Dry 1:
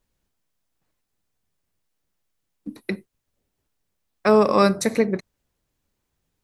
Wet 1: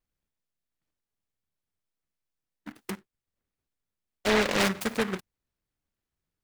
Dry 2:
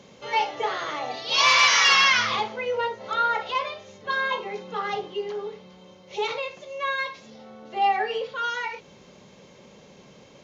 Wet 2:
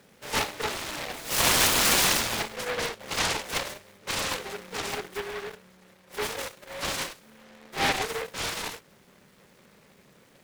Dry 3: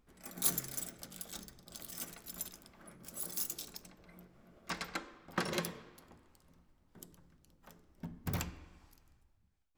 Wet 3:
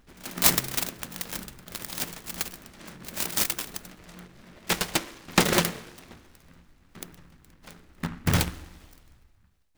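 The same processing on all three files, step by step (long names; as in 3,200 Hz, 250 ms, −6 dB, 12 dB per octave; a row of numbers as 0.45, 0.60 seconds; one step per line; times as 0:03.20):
in parallel at −7.5 dB: bit reduction 6 bits
on the sum: short delay modulated by noise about 1,300 Hz, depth 0.26 ms
loudness normalisation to −27 LKFS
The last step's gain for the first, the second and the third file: −11.0, −7.0, +11.0 decibels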